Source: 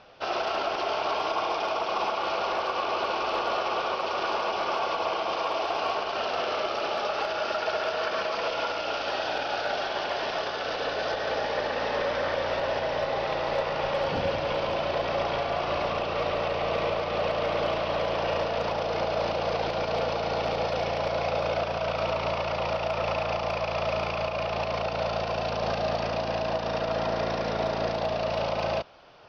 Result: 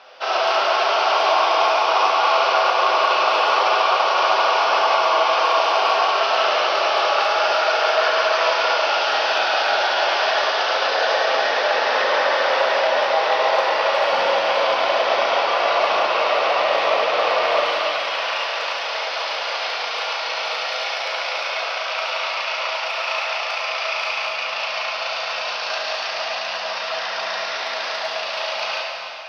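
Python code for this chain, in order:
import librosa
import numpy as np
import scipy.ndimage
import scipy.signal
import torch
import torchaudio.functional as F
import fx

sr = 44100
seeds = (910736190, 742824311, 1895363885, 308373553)

y = fx.highpass(x, sr, hz=fx.steps((0.0, 680.0), (17.6, 1500.0)), slope=12)
y = fx.rev_plate(y, sr, seeds[0], rt60_s=3.0, hf_ratio=0.85, predelay_ms=0, drr_db=-3.5)
y = y * librosa.db_to_amplitude(7.5)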